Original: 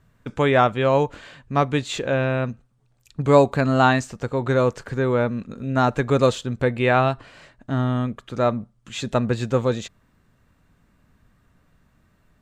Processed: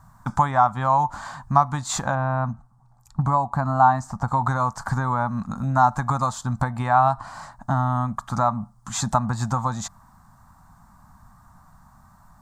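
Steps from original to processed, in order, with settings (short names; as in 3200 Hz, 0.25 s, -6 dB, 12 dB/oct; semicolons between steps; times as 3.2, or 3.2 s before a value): 2.15–4.28 high shelf 2200 Hz -11 dB; compressor 10:1, threshold -25 dBFS, peak gain reduction 16 dB; EQ curve 210 Hz 0 dB, 450 Hz -23 dB, 800 Hz +12 dB, 1100 Hz +10 dB, 2700 Hz -18 dB, 4800 Hz 0 dB, 7400 Hz +4 dB; gain +7.5 dB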